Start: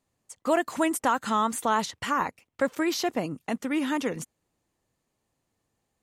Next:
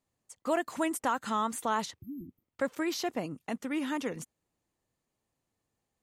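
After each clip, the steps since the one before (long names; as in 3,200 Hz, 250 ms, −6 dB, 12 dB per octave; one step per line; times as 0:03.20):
healed spectral selection 0:02.03–0:02.45, 370–12,000 Hz both
level −5.5 dB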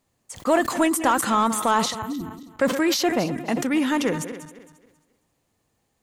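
feedback delay that plays each chunk backwards 135 ms, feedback 52%, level −13 dB
in parallel at −3 dB: soft clipping −28 dBFS, distortion −11 dB
on the sum: level that may fall only so fast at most 76 dB per second
level +6.5 dB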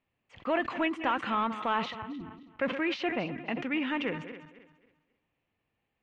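transistor ladder low-pass 3,000 Hz, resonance 55%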